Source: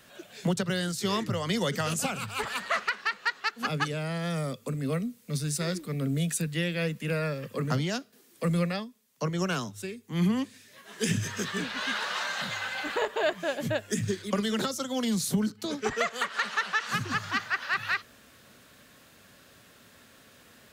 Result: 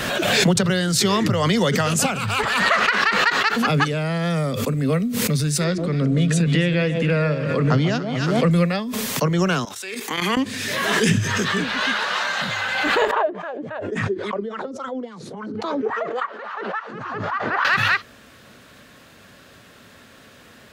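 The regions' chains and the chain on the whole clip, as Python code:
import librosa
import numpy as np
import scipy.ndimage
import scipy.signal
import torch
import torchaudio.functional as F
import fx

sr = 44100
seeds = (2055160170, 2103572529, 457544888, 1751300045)

y = fx.chain(x, sr, fx.air_absorb(metres=76.0),
    fx.echo_alternate(ms=141, hz=950.0, feedback_pct=61, wet_db=-9.0), at=(5.64, 8.51))
y = fx.chain(y, sr, fx.highpass(hz=740.0, slope=12),
    fx.level_steps(step_db=13), at=(9.65, 10.37))
y = fx.chain(y, sr, fx.wah_lfo(hz=3.6, low_hz=310.0, high_hz=1200.0, q=3.8),
    fx.brickwall_lowpass(high_hz=12000.0), at=(13.11, 17.65))
y = fx.high_shelf(y, sr, hz=6400.0, db=-9.0)
y = fx.pre_swell(y, sr, db_per_s=26.0)
y = y * librosa.db_to_amplitude(9.0)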